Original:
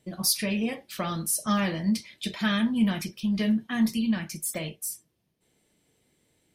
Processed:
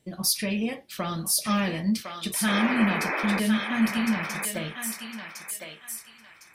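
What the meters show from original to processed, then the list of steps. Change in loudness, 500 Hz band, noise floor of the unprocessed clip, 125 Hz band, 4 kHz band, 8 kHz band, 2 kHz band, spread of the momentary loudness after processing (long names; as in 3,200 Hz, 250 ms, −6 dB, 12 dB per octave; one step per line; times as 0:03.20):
+1.0 dB, +2.5 dB, −74 dBFS, 0.0 dB, +2.0 dB, +2.0 dB, +6.0 dB, 13 LU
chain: sound drawn into the spectrogram noise, 0:02.47–0:03.40, 230–2,600 Hz −29 dBFS
feedback echo with a high-pass in the loop 1,057 ms, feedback 32%, high-pass 860 Hz, level −3 dB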